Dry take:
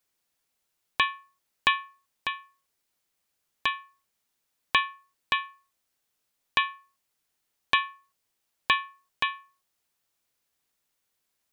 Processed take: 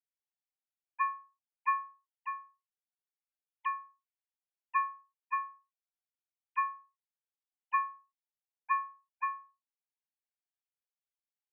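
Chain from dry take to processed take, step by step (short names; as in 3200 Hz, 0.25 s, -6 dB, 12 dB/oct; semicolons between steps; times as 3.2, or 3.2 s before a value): sine-wave speech; gain -6 dB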